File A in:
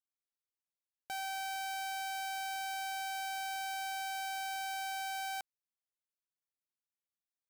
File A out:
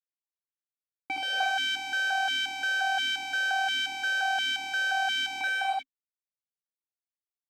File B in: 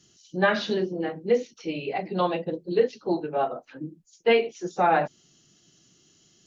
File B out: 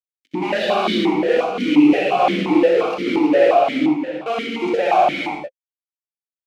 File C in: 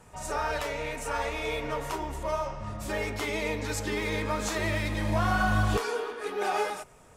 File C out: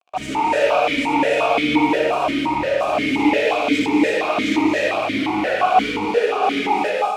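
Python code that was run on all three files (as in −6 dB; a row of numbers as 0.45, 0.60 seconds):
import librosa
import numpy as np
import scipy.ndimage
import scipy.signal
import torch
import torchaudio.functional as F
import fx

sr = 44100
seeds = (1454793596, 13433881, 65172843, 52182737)

y = fx.dynamic_eq(x, sr, hz=1800.0, q=1.9, threshold_db=-47.0, ratio=4.0, max_db=-6)
y = fx.rider(y, sr, range_db=5, speed_s=2.0)
y = fx.fuzz(y, sr, gain_db=41.0, gate_db=-42.0)
y = fx.room_early_taps(y, sr, ms=(64, 78), db=(-4.5, -5.5))
y = fx.rev_gated(y, sr, seeds[0], gate_ms=350, shape='rising', drr_db=-0.5)
y = fx.vowel_held(y, sr, hz=5.7)
y = F.gain(torch.from_numpy(y), 4.5).numpy()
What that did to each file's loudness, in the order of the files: +10.5, +8.5, +11.5 LU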